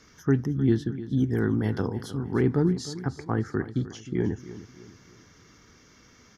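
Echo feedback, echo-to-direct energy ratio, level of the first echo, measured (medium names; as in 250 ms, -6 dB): 42%, -14.0 dB, -15.0 dB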